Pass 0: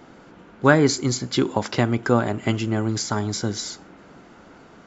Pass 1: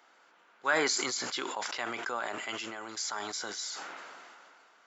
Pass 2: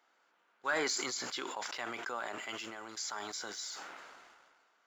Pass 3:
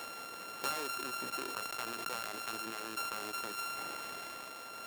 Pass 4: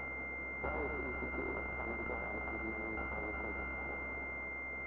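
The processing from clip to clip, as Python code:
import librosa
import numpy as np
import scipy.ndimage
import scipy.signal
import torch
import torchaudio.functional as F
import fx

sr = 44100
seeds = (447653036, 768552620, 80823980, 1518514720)

y1 = scipy.signal.sosfilt(scipy.signal.butter(2, 950.0, 'highpass', fs=sr, output='sos'), x)
y1 = fx.sustainer(y1, sr, db_per_s=23.0)
y1 = y1 * librosa.db_to_amplitude(-8.5)
y2 = fx.leveller(y1, sr, passes=1)
y2 = y2 * librosa.db_to_amplitude(-8.0)
y3 = np.r_[np.sort(y2[:len(y2) // 32 * 32].reshape(-1, 32), axis=1).ravel(), y2[len(y2) // 32 * 32:]]
y3 = fx.band_squash(y3, sr, depth_pct=100)
y4 = y3 + 10.0 ** (-6.0 / 20.0) * np.pad(y3, (int(118 * sr / 1000.0), 0))[:len(y3)]
y4 = fx.pwm(y4, sr, carrier_hz=2100.0)
y4 = y4 * librosa.db_to_amplitude(2.5)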